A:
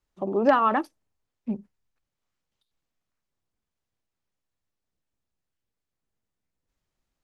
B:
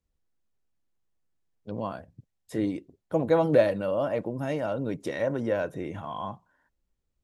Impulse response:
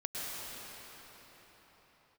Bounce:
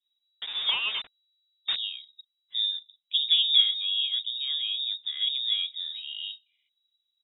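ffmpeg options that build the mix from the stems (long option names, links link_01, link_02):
-filter_complex "[0:a]aexciter=amount=3.8:drive=9.7:freq=2800,acrusher=bits=4:mix=0:aa=0.000001,adelay=200,volume=0dB[link_01];[1:a]lowpass=1100,volume=-0.5dB,asplit=2[link_02][link_03];[link_03]apad=whole_len=327897[link_04];[link_01][link_04]sidechaingate=range=-8dB:threshold=-44dB:ratio=16:detection=peak[link_05];[link_05][link_02]amix=inputs=2:normalize=0,lowpass=frequency=3300:width_type=q:width=0.5098,lowpass=frequency=3300:width_type=q:width=0.6013,lowpass=frequency=3300:width_type=q:width=0.9,lowpass=frequency=3300:width_type=q:width=2.563,afreqshift=-3900"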